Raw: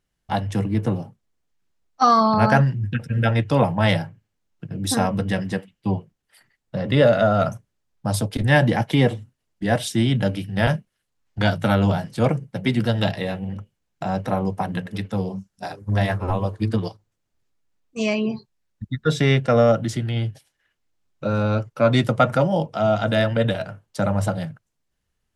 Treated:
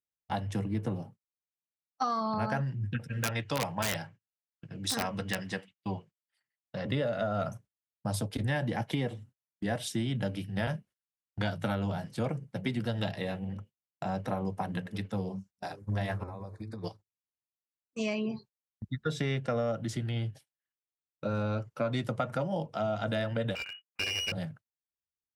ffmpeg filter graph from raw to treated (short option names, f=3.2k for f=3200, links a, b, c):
-filter_complex "[0:a]asettb=1/sr,asplit=3[a][b][c];[a]atrim=end=3.104[d];[b]atrim=start=3.1:end=6.85,asetpts=PTS-STARTPTS,afade=t=in:d=0.004:c=qsin,afade=t=out:st=3.746:d=0.004:c=qsin,lowpass=7.6k,tiltshelf=f=790:g=-5.5,aeval=exprs='(mod(3.35*val(0)+1,2)-1)/3.35':c=same[e];[c]atrim=start=6.846[f];[d][e]acrossfade=d=0.004:c1=hsin:c2=qsin[g];[g][f]acrossfade=d=0.004:c1=qsin:c2=hsin,asettb=1/sr,asplit=3[h][i][j];[h]atrim=end=16.234[k];[i]atrim=start=16.23:end=16.84,asetpts=PTS-STARTPTS,afade=t=in:d=0.004:c=qsin,afade=t=out:st=0.606:d=0.004:c=qsin,asuperstop=centerf=3000:order=8:qfactor=3,acompressor=threshold=-29dB:ratio=16:attack=3.2:release=140:knee=1:detection=peak[l];[j]atrim=start=16.836[m];[k][l]acrossfade=d=0.004:c1=hsin:c2=qsin[n];[n][m]acrossfade=d=0.004:c1=qsin:c2=hsin,asettb=1/sr,asplit=3[o][p][q];[o]atrim=end=23.554[r];[p]atrim=start=23.55:end=24.32,asetpts=PTS-STARTPTS,afade=t=in:d=0.004:c=qsin,afade=t=out:st=0.766:d=0.004:c=qsin,agate=range=-33dB:threshold=-43dB:ratio=3:release=100:detection=peak,lowpass=f=2.6k:t=q:w=0.5098,lowpass=f=2.6k:t=q:w=0.6013,lowpass=f=2.6k:t=q:w=0.9,lowpass=f=2.6k:t=q:w=2.563,afreqshift=-3000,aeval=exprs='clip(val(0),-1,0.0299)':c=same[s];[q]atrim=start=24.316[t];[r][s]acrossfade=d=0.004:c1=hsin:c2=qsin[u];[u][t]acrossfade=d=0.004:c1=qsin:c2=hsin,highpass=54,agate=range=-21dB:threshold=-42dB:ratio=16:detection=peak,acompressor=threshold=-20dB:ratio=6,volume=-7.5dB"